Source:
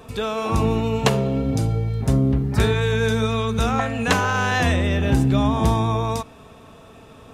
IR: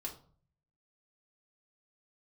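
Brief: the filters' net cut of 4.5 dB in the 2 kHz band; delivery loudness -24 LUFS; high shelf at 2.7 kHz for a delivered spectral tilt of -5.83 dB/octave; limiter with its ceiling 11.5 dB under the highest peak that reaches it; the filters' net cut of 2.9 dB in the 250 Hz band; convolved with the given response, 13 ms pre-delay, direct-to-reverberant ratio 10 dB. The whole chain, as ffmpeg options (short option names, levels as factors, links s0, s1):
-filter_complex "[0:a]equalizer=f=250:t=o:g=-3.5,equalizer=f=2000:t=o:g=-8.5,highshelf=f=2700:g=5,alimiter=limit=0.188:level=0:latency=1,asplit=2[s0][s1];[1:a]atrim=start_sample=2205,adelay=13[s2];[s1][s2]afir=irnorm=-1:irlink=0,volume=0.376[s3];[s0][s3]amix=inputs=2:normalize=0,volume=0.944"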